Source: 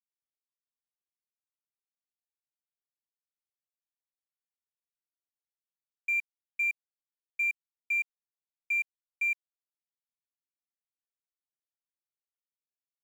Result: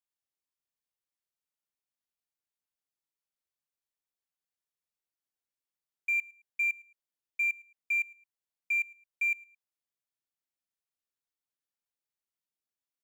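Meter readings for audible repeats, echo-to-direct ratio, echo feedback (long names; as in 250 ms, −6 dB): 2, −22.5 dB, 26%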